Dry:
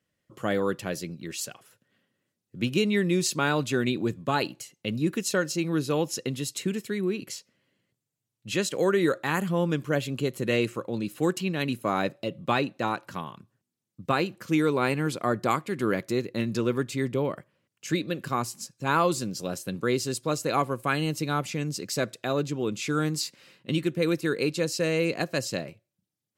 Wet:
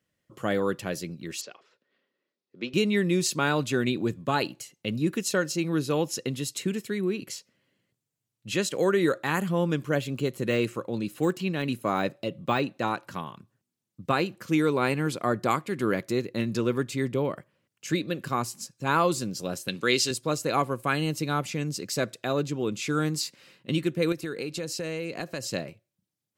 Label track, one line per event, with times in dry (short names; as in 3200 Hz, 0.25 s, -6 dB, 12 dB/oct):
1.410000	2.740000	speaker cabinet 380–4800 Hz, peaks and dips at 390 Hz +4 dB, 770 Hz -4 dB, 1600 Hz -5 dB, 3000 Hz -5 dB
9.970000	12.670000	de-esser amount 85%
19.680000	20.110000	weighting filter D
24.120000	25.480000	compressor 5:1, threshold -29 dBFS